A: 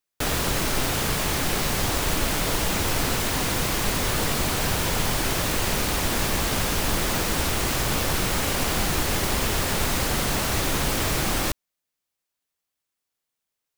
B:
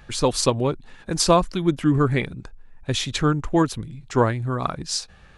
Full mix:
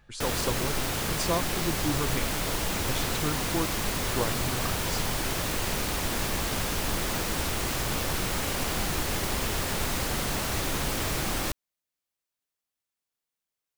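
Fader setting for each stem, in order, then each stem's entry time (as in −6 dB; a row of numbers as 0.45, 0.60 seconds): −5.0, −12.0 decibels; 0.00, 0.00 seconds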